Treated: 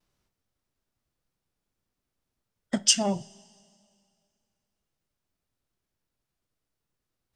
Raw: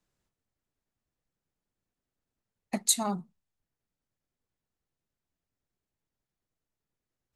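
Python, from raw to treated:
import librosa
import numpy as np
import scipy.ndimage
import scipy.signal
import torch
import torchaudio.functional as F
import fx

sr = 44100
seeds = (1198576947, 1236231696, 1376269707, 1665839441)

y = fx.vibrato(x, sr, rate_hz=1.2, depth_cents=52.0)
y = fx.formant_shift(y, sr, semitones=-5)
y = fx.rev_double_slope(y, sr, seeds[0], early_s=0.27, late_s=2.3, knee_db=-18, drr_db=15.0)
y = y * 10.0 ** (4.5 / 20.0)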